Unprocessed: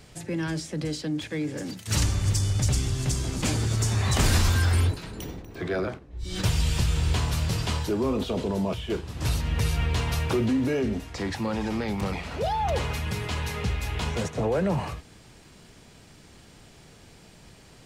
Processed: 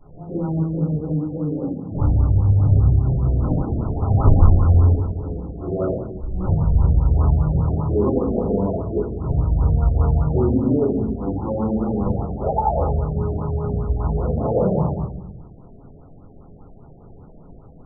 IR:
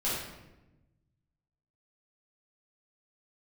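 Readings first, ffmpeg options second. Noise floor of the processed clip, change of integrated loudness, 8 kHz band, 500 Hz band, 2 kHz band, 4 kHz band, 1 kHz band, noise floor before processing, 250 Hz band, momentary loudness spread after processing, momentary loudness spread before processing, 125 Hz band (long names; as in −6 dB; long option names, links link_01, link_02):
−44 dBFS, +6.5 dB, below −40 dB, +6.5 dB, below −15 dB, below −40 dB, +4.5 dB, −52 dBFS, +6.5 dB, 10 LU, 8 LU, +8.0 dB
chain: -filter_complex "[0:a]acrusher=bits=4:mode=log:mix=0:aa=0.000001[link_01];[1:a]atrim=start_sample=2205,asetrate=57330,aresample=44100[link_02];[link_01][link_02]afir=irnorm=-1:irlink=0,afftfilt=real='re*lt(b*sr/1024,730*pow(1500/730,0.5+0.5*sin(2*PI*5*pts/sr)))':imag='im*lt(b*sr/1024,730*pow(1500/730,0.5+0.5*sin(2*PI*5*pts/sr)))':win_size=1024:overlap=0.75,volume=-1dB"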